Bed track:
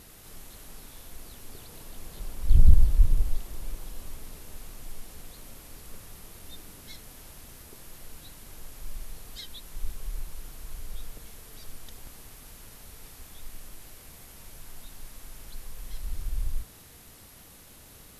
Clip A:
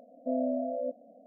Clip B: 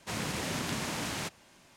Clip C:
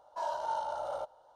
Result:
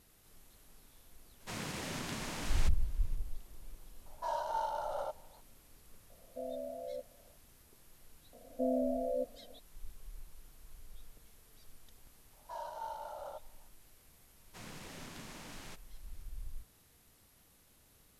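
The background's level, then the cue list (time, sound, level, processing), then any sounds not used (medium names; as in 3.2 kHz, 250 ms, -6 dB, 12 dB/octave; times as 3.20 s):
bed track -14.5 dB
1.40 s: add B -6.5 dB
4.06 s: add C -1.5 dB
6.10 s: add A -12.5 dB + comb 1.8 ms, depth 59%
8.33 s: add A -3.5 dB + peaking EQ 460 Hz +7.5 dB 0.25 oct
12.33 s: add C -8.5 dB
14.47 s: add B -15 dB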